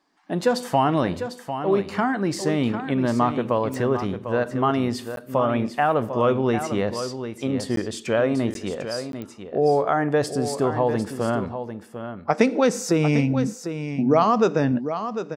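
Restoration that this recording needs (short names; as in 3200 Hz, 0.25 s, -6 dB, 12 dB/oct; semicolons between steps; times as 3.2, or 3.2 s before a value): de-click; interpolate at 5.16/7.76/8.54/9.12, 12 ms; inverse comb 0.749 s -9.5 dB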